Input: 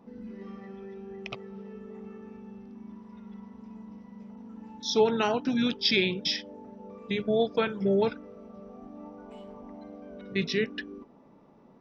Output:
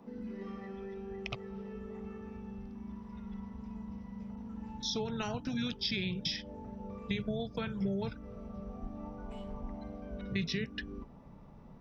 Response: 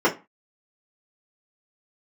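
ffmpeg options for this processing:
-filter_complex "[0:a]acrossover=split=230|5800[s0][s1][s2];[s0]acompressor=threshold=0.00794:ratio=4[s3];[s1]acompressor=threshold=0.0141:ratio=4[s4];[s2]acompressor=threshold=0.00447:ratio=4[s5];[s3][s4][s5]amix=inputs=3:normalize=0,asubboost=boost=10.5:cutoff=96,volume=1.12"

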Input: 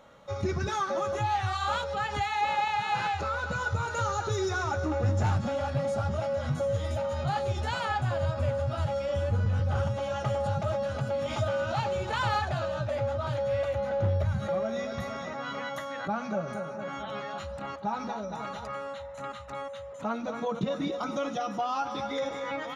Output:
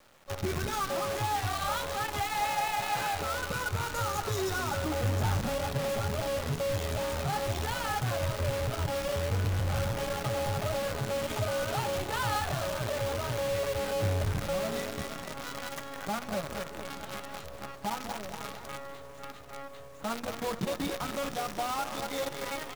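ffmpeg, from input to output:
-filter_complex "[0:a]acrusher=bits=6:dc=4:mix=0:aa=0.000001,asplit=8[s0][s1][s2][s3][s4][s5][s6][s7];[s1]adelay=202,afreqshift=-130,volume=0.224[s8];[s2]adelay=404,afreqshift=-260,volume=0.135[s9];[s3]adelay=606,afreqshift=-390,volume=0.0804[s10];[s4]adelay=808,afreqshift=-520,volume=0.0484[s11];[s5]adelay=1010,afreqshift=-650,volume=0.0292[s12];[s6]adelay=1212,afreqshift=-780,volume=0.0174[s13];[s7]adelay=1414,afreqshift=-910,volume=0.0105[s14];[s0][s8][s9][s10][s11][s12][s13][s14]amix=inputs=8:normalize=0,volume=0.708"

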